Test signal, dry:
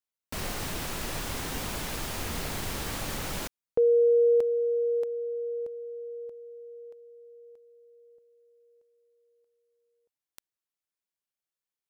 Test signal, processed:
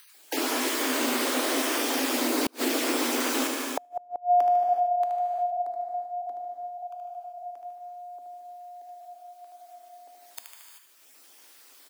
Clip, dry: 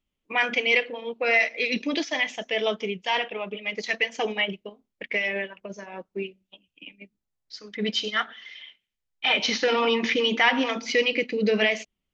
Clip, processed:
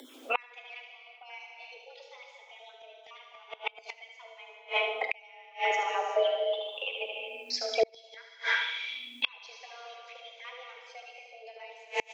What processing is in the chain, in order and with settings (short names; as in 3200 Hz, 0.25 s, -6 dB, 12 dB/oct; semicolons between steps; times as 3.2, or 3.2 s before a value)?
random spectral dropouts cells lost 23%; on a send: feedback echo 75 ms, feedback 44%, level -7 dB; on the sum: upward compressor, threshold -43 dBFS; frequency shift +240 Hz; non-linear reverb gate 0.41 s flat, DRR 2.5 dB; flipped gate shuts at -19 dBFS, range -35 dB; in parallel at +0.5 dB: compressor, threshold -42 dBFS; on the sum: gain +3.5 dB